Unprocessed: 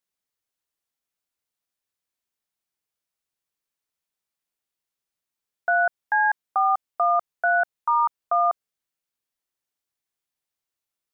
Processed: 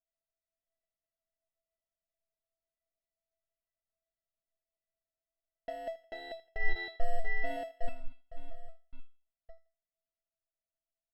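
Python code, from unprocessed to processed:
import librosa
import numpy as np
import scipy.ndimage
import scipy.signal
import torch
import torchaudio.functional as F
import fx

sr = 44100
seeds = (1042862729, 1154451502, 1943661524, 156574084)

y = fx.reverse_delay(x, sr, ms=500, wet_db=-3.0)
y = fx.peak_eq(y, sr, hz=580.0, db=fx.steps((0.0, 13.0), (6.61, 5.5), (7.89, -10.5)), octaves=2.8)
y = fx.over_compress(y, sr, threshold_db=-13.0, ratio=-0.5)
y = fx.sample_hold(y, sr, seeds[0], rate_hz=1200.0, jitter_pct=0)
y = fx.air_absorb(y, sr, metres=350.0)
y = fx.comb_fb(y, sr, f0_hz=660.0, decay_s=0.32, harmonics='all', damping=0.0, mix_pct=100)
y = fx.echo_thinned(y, sr, ms=83, feedback_pct=37, hz=420.0, wet_db=-18)
y = fx.end_taper(y, sr, db_per_s=470.0)
y = y * 10.0 ** (3.5 / 20.0)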